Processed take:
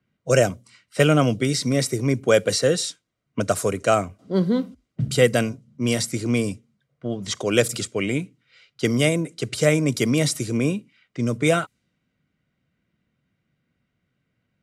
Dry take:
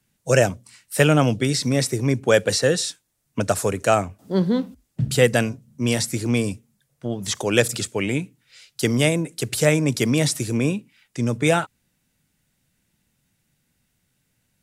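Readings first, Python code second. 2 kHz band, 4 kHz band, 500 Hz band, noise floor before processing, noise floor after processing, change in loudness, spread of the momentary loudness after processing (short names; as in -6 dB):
-2.0 dB, -1.0 dB, 0.0 dB, -72 dBFS, -76 dBFS, -1.0 dB, 11 LU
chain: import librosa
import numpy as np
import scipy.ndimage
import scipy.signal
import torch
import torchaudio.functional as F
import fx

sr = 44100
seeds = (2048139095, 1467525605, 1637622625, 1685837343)

y = fx.env_lowpass(x, sr, base_hz=2400.0, full_db=-18.0)
y = fx.notch_comb(y, sr, f0_hz=860.0)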